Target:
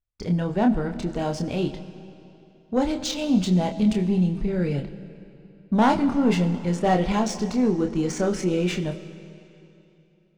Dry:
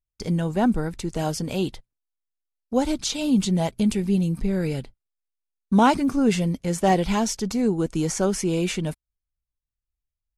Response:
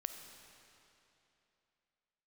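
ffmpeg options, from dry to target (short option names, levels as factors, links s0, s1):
-filter_complex "[0:a]adynamicsmooth=sensitivity=2:basefreq=3800,asoftclip=type=tanh:threshold=0.237,asplit=2[s0][s1];[1:a]atrim=start_sample=2205,adelay=28[s2];[s1][s2]afir=irnorm=-1:irlink=0,volume=0.708[s3];[s0][s3]amix=inputs=2:normalize=0"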